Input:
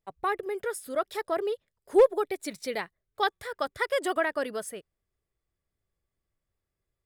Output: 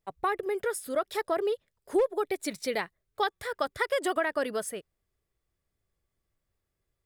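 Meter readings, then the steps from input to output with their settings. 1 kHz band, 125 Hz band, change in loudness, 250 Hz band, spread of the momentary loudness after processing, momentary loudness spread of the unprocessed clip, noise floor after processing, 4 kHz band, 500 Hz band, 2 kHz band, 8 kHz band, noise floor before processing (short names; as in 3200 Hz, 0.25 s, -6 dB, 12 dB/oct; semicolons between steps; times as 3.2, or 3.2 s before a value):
-0.5 dB, n/a, -1.5 dB, +0.5 dB, 6 LU, 14 LU, -83 dBFS, -0.5 dB, -2.0 dB, -0.5 dB, +2.0 dB, under -85 dBFS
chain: compressor 4:1, threshold -26 dBFS, peak gain reduction 10 dB; gain +2.5 dB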